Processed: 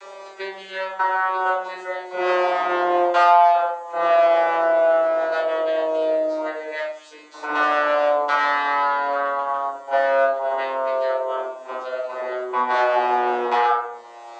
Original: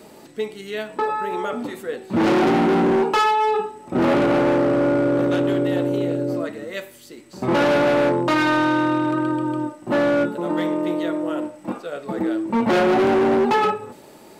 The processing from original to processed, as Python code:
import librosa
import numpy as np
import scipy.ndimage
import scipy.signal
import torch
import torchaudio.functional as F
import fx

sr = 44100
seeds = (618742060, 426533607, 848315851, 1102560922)

y = fx.vocoder_glide(x, sr, note=55, semitones=-9)
y = scipy.signal.sosfilt(scipy.signal.butter(4, 690.0, 'highpass', fs=sr, output='sos'), y)
y = fx.room_shoebox(y, sr, seeds[0], volume_m3=290.0, walls='furnished', distance_m=4.7)
y = fx.band_squash(y, sr, depth_pct=40)
y = F.gain(torch.from_numpy(y), 1.0).numpy()